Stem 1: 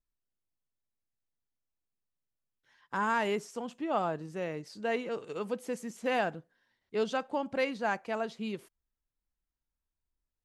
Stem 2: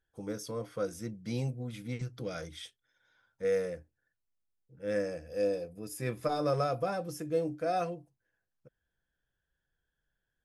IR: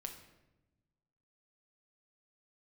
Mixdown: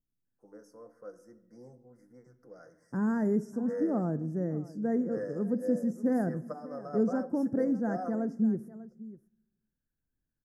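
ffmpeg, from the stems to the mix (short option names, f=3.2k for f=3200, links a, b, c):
-filter_complex "[0:a]equalizer=f=125:t=o:w=1:g=11,equalizer=f=250:t=o:w=1:g=11,equalizer=f=1k:t=o:w=1:g=-12,equalizer=f=2k:t=o:w=1:g=-5,equalizer=f=4k:t=o:w=1:g=-10,equalizer=f=8k:t=o:w=1:g=-7,volume=-3.5dB,asplit=4[a][b][c][d];[b]volume=-6.5dB[e];[c]volume=-15.5dB[f];[1:a]highpass=290,highshelf=f=3k:g=-11,adelay=250,volume=-8dB,asplit=2[g][h];[h]volume=-6dB[i];[d]apad=whole_len=471721[j];[g][j]sidechaingate=range=-9dB:threshold=-53dB:ratio=16:detection=peak[k];[2:a]atrim=start_sample=2205[l];[e][i]amix=inputs=2:normalize=0[m];[m][l]afir=irnorm=-1:irlink=0[n];[f]aecho=0:1:596:1[o];[a][k][n][o]amix=inputs=4:normalize=0,asuperstop=centerf=3100:order=12:qfactor=1"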